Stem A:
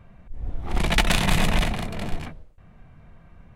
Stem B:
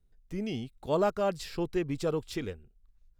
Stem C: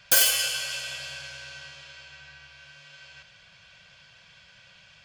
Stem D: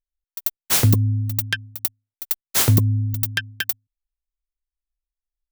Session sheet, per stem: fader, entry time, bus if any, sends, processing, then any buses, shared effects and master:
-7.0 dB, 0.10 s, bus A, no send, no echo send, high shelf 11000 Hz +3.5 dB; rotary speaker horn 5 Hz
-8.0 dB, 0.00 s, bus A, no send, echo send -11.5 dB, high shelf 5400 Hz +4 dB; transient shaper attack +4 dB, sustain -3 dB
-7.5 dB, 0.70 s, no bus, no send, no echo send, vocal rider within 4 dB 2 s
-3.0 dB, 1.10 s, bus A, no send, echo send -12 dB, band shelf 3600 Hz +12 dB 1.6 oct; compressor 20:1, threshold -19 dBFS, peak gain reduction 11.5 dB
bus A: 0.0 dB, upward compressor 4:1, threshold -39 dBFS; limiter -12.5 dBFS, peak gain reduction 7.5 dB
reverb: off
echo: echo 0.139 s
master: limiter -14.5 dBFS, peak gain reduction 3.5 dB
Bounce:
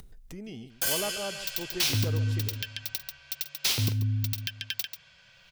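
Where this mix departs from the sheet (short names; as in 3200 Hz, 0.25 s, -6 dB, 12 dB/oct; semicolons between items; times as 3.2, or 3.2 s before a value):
stem A: muted; stem B: missing transient shaper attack +4 dB, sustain -3 dB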